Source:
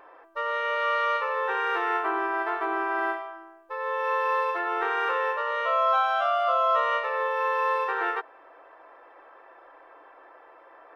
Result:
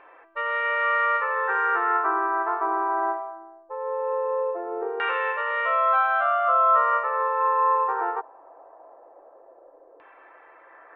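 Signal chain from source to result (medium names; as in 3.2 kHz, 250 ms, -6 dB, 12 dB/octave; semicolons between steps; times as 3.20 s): LFO low-pass saw down 0.2 Hz 500–2600 Hz; resampled via 11.025 kHz; trim -1.5 dB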